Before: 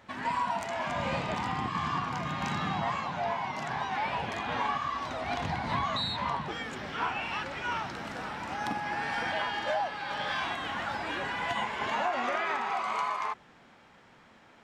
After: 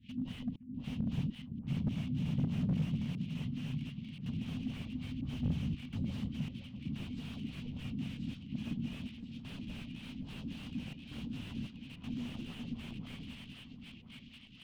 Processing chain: self-modulated delay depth 0.45 ms; Chebyshev band-stop 250–2900 Hz, order 4; bass shelf 120 Hz -3.5 dB; in parallel at -10 dB: one-sided clip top -39.5 dBFS; on the sum: reverberation RT60 0.65 s, pre-delay 116 ms, DRR 5.5 dB; trance gate "xxx.xxx..xxxxx" 81 bpm -60 dB; LFO low-pass sine 3.6 Hz 280–2400 Hz; echo whose repeats swap between lows and highs 515 ms, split 1.2 kHz, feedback 69%, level -8 dB; slew-rate limiter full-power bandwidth 5.3 Hz; trim +3 dB

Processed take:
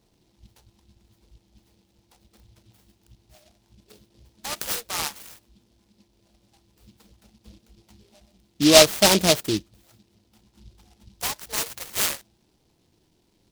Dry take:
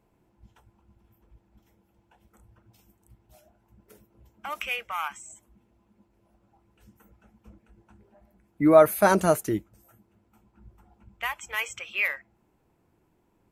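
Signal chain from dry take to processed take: vibrato 2.5 Hz 9.7 cents; delay time shaken by noise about 3.9 kHz, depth 0.19 ms; trim +2.5 dB

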